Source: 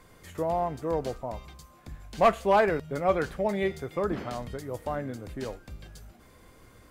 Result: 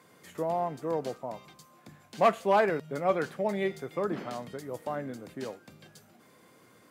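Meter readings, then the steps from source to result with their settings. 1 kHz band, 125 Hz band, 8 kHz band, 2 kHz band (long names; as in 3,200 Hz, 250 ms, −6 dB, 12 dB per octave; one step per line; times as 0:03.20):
−2.0 dB, −4.5 dB, can't be measured, −2.0 dB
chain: high-pass filter 140 Hz 24 dB per octave
level −2 dB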